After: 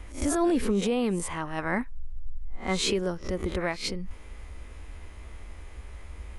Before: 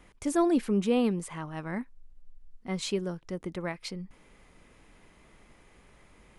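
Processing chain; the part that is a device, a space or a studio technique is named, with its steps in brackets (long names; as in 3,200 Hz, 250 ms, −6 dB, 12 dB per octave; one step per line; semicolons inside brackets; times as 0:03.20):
peak hold with a rise ahead of every peak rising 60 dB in 0.30 s
car stereo with a boomy subwoofer (low shelf with overshoot 100 Hz +10 dB, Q 3; brickwall limiter −23.5 dBFS, peak gain reduction 9 dB)
0:01.58–0:02.94: parametric band 1,300 Hz +4 dB 2 octaves
level +6 dB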